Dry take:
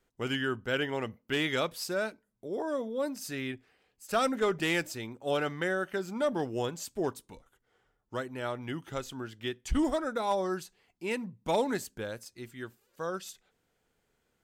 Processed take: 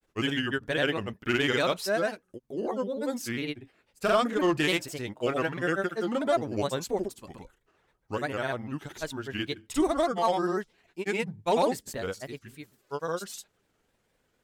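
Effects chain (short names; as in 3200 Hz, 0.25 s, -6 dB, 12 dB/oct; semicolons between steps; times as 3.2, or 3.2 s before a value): grains, spray 0.1 s, pitch spread up and down by 3 st; gain +4.5 dB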